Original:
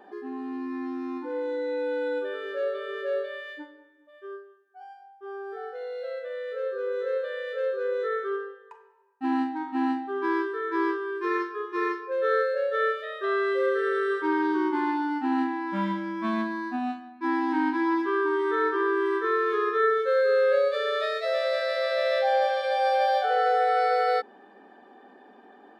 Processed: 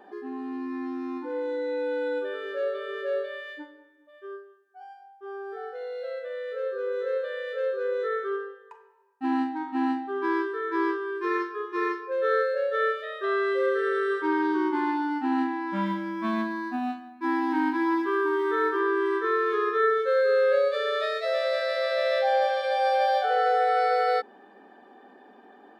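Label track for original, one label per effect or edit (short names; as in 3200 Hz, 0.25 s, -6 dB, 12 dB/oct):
15.860000	18.800000	short-mantissa float mantissa of 6-bit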